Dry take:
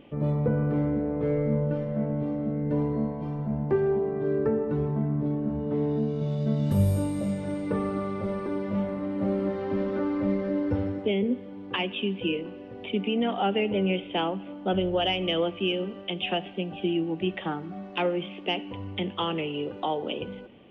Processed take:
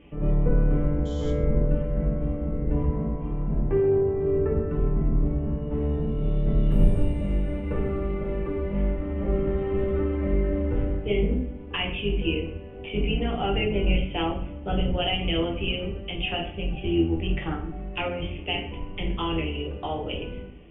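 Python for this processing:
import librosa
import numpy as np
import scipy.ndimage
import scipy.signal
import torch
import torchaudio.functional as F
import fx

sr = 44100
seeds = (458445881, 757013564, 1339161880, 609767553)

y = fx.octave_divider(x, sr, octaves=2, level_db=3.0)
y = fx.spec_paint(y, sr, seeds[0], shape='noise', start_s=1.05, length_s=0.26, low_hz=3000.0, high_hz=7500.0, level_db=-38.0)
y = fx.high_shelf_res(y, sr, hz=3500.0, db=-9.0, q=3.0)
y = y + 10.0 ** (-20.5 / 20.0) * np.pad(y, (int(130 * sr / 1000.0), 0))[:len(y)]
y = fx.room_shoebox(y, sr, seeds[1], volume_m3=45.0, walls='mixed', distance_m=0.69)
y = y * 10.0 ** (-6.0 / 20.0)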